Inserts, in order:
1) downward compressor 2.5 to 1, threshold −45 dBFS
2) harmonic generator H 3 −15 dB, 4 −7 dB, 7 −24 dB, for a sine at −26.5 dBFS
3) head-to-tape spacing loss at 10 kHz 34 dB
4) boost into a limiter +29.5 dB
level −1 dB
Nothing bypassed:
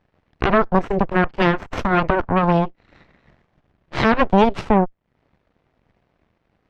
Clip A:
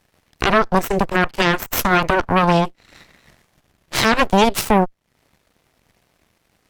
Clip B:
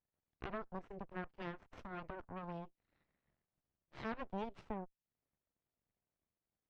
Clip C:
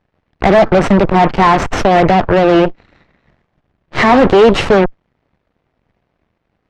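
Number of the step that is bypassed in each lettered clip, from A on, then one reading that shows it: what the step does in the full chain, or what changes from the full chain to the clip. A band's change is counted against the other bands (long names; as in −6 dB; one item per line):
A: 3, 4 kHz band +9.0 dB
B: 4, change in crest factor +3.0 dB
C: 1, average gain reduction 12.5 dB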